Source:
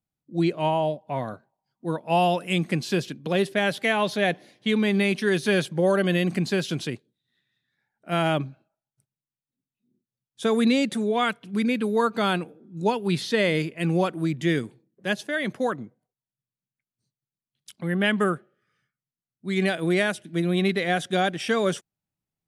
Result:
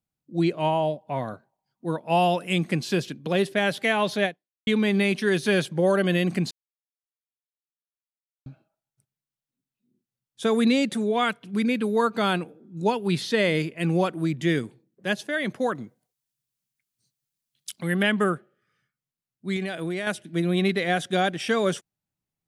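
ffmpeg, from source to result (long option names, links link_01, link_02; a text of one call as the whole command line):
ffmpeg -i in.wav -filter_complex "[0:a]asettb=1/sr,asplit=3[link_01][link_02][link_03];[link_01]atrim=end=15.754[link_04];[link_02]atrim=start=15.75:end=18.03,asetpts=PTS-STARTPTS,afade=type=in:duration=0.004:curve=qsin,afade=type=out:start_time=2.276:duration=0.004:curve=qsin,highshelf=frequency=2400:gain=11.5[link_05];[link_03]atrim=start=18.026[link_06];[link_04][link_05]acrossfade=duration=0.004:curve1=hsin:curve2=qsin[link_07];[link_07][link_06]acrossfade=duration=0.004:curve1=qsin:curve2=hsin,asettb=1/sr,asplit=3[link_08][link_09][link_10];[link_08]atrim=end=19.564[link_11];[link_09]atrim=start=19.56:end=20.07,asetpts=PTS-STARTPTS,afade=type=in:duration=0.004:curve=qsin,afade=type=out:start_time=0.506:duration=0.004:curve=qsin,acompressor=threshold=-26dB:ratio=4:attack=3.2:release=140:knee=1:detection=peak[link_12];[link_10]atrim=start=20.066[link_13];[link_11][link_12]acrossfade=duration=0.004:curve1=hsin:curve2=qsin[link_14];[link_14][link_13]acrossfade=duration=0.004:curve1=qsin:curve2=hsin,asplit=4[link_15][link_16][link_17][link_18];[link_15]atrim=end=4.67,asetpts=PTS-STARTPTS,afade=type=out:start_time=4.25:duration=0.42:curve=exp[link_19];[link_16]atrim=start=4.67:end=6.51,asetpts=PTS-STARTPTS,afade=type=in:duration=0.004:curve=hsin,afade=type=out:start_time=1.836:duration=0.004:curve=hsin[link_20];[link_17]atrim=start=6.51:end=8.46,asetpts=PTS-STARTPTS,volume=0[link_21];[link_18]atrim=start=8.46,asetpts=PTS-STARTPTS,afade=type=in:duration=0.004:curve=hsin[link_22];[link_19][link_20][link_21][link_22]concat=n=4:v=0:a=1" out.wav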